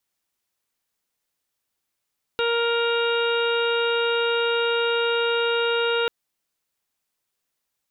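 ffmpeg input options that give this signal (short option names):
-f lavfi -i "aevalsrc='0.0794*sin(2*PI*468*t)+0.0282*sin(2*PI*936*t)+0.0501*sin(2*PI*1404*t)+0.00891*sin(2*PI*1872*t)+0.0168*sin(2*PI*2340*t)+0.0355*sin(2*PI*2808*t)+0.01*sin(2*PI*3276*t)+0.0266*sin(2*PI*3744*t)':d=3.69:s=44100"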